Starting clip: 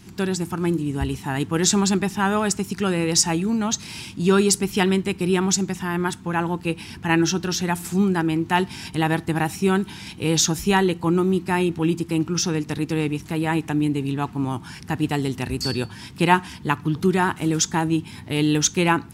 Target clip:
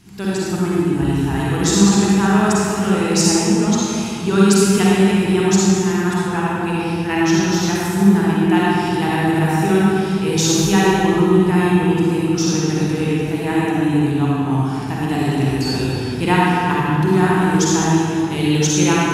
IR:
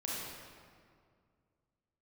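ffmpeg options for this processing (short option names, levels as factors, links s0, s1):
-filter_complex "[1:a]atrim=start_sample=2205,asetrate=30429,aresample=44100[s0];[0:a][s0]afir=irnorm=-1:irlink=0,volume=0.891"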